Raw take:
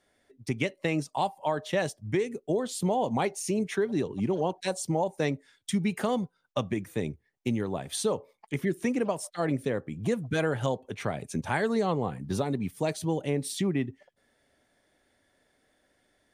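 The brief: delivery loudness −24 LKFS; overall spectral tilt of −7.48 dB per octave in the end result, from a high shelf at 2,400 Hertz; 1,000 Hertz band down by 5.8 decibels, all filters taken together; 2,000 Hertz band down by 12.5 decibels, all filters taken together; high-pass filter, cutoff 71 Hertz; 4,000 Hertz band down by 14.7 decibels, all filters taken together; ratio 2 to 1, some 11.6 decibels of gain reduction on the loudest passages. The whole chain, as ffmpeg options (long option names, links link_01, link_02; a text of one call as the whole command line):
ffmpeg -i in.wav -af "highpass=71,equalizer=frequency=1000:width_type=o:gain=-5,equalizer=frequency=2000:width_type=o:gain=-8.5,highshelf=frequency=2400:gain=-8,equalizer=frequency=4000:width_type=o:gain=-8.5,acompressor=threshold=-46dB:ratio=2,volume=19dB" out.wav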